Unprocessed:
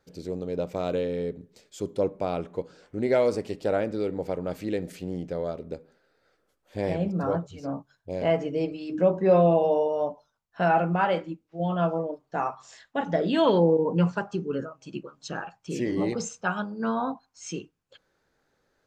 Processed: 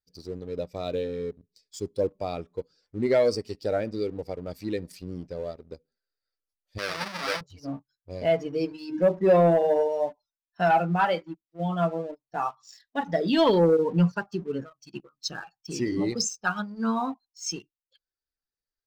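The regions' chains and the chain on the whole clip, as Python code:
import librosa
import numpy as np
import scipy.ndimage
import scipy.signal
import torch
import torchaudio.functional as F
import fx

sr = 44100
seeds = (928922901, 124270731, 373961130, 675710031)

y = fx.chain(x, sr, fx.halfwave_hold(),
    fx.bandpass_q(hz=1400.0, q=0.64),
    fx.quant_float(bits=4), at=(6.78, 7.41))
y = fx.bin_expand(y, sr, power=1.5)
y = fx.peak_eq(y, sr, hz=5100.0, db=12.0, octaves=0.56)
y = fx.leveller(y, sr, passes=1)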